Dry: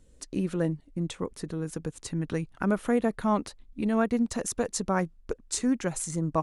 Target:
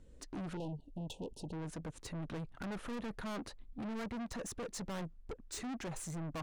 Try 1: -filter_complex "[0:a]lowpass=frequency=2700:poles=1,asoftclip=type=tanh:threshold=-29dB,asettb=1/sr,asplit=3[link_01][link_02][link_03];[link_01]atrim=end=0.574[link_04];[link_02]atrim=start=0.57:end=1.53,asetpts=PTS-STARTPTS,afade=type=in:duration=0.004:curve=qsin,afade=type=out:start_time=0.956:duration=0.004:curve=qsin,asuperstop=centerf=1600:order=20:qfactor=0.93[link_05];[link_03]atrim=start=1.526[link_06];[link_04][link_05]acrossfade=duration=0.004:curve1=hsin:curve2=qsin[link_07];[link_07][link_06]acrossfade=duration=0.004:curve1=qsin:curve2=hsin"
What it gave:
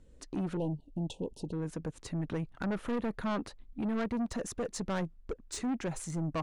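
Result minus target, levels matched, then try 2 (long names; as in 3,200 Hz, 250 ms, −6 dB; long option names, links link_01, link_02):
soft clipping: distortion −5 dB
-filter_complex "[0:a]lowpass=frequency=2700:poles=1,asoftclip=type=tanh:threshold=-39dB,asettb=1/sr,asplit=3[link_01][link_02][link_03];[link_01]atrim=end=0.574[link_04];[link_02]atrim=start=0.57:end=1.53,asetpts=PTS-STARTPTS,afade=type=in:duration=0.004:curve=qsin,afade=type=out:start_time=0.956:duration=0.004:curve=qsin,asuperstop=centerf=1600:order=20:qfactor=0.93[link_05];[link_03]atrim=start=1.526[link_06];[link_04][link_05]acrossfade=duration=0.004:curve1=hsin:curve2=qsin[link_07];[link_07][link_06]acrossfade=duration=0.004:curve1=qsin:curve2=hsin"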